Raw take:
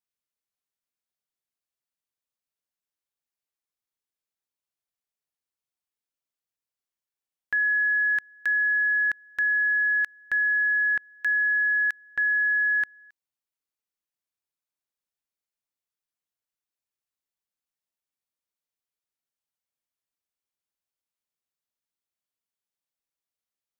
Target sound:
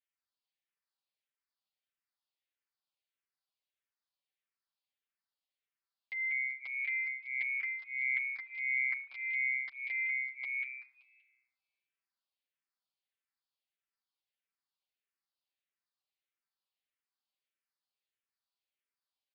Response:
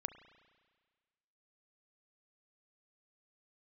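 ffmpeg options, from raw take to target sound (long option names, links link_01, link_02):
-filter_complex "[0:a]highpass=frequency=870:poles=1,aecho=1:1:6.3:0.71,alimiter=level_in=5dB:limit=-24dB:level=0:latency=1:release=460,volume=-5dB,volume=32.5dB,asoftclip=hard,volume=-32.5dB,asetrate=54243,aresample=44100,asplit=5[link_01][link_02][link_03][link_04][link_05];[link_02]adelay=191,afreqshift=130,volume=-6dB[link_06];[link_03]adelay=382,afreqshift=260,volume=-14.6dB[link_07];[link_04]adelay=573,afreqshift=390,volume=-23.3dB[link_08];[link_05]adelay=764,afreqshift=520,volume=-31.9dB[link_09];[link_01][link_06][link_07][link_08][link_09]amix=inputs=5:normalize=0,asplit=2[link_10][link_11];[1:a]atrim=start_sample=2205,adelay=9[link_12];[link_11][link_12]afir=irnorm=-1:irlink=0,volume=0.5dB[link_13];[link_10][link_13]amix=inputs=2:normalize=0,aresample=11025,aresample=44100,asplit=2[link_14][link_15];[link_15]afreqshift=-1.6[link_16];[link_14][link_16]amix=inputs=2:normalize=1"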